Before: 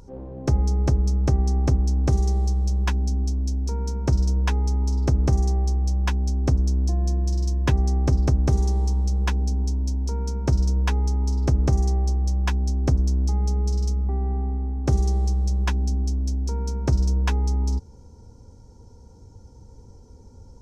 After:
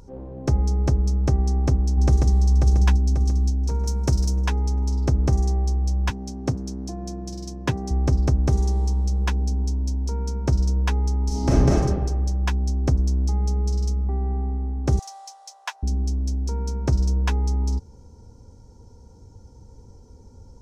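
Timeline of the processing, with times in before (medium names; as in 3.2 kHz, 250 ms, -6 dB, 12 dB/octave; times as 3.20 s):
1.43–2.42 s: echo throw 540 ms, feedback 50%, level -4 dB
3.86–4.47 s: treble shelf 5.6 kHz +11.5 dB
6.10–7.91 s: high-pass 97 Hz 24 dB/octave
11.27–11.69 s: reverb throw, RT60 1.3 s, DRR -6.5 dB
14.99–15.83 s: steep high-pass 650 Hz 48 dB/octave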